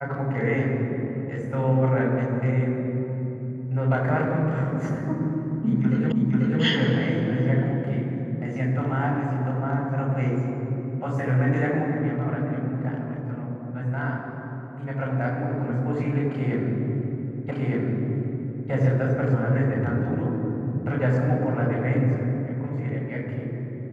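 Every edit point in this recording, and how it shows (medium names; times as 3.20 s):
6.12 s: repeat of the last 0.49 s
17.51 s: repeat of the last 1.21 s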